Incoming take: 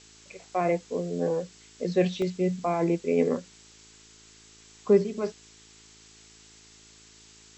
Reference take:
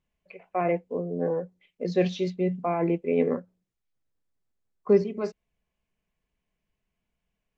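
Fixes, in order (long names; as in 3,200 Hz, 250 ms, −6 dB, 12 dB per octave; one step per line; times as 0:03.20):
hum removal 54.3 Hz, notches 8
repair the gap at 0:02.22/0:03.72, 1.5 ms
noise reduction from a noise print 29 dB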